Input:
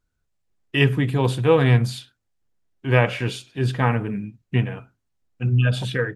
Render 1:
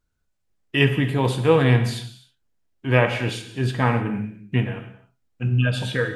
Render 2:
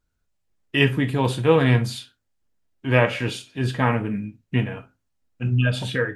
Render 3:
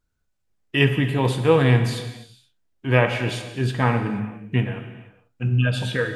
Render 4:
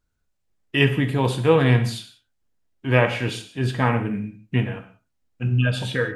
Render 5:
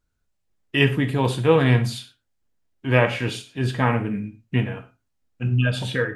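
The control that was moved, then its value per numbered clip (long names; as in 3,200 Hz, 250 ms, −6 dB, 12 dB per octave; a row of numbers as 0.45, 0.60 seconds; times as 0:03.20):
reverb whose tail is shaped and stops, gate: 330, 90, 510, 210, 140 milliseconds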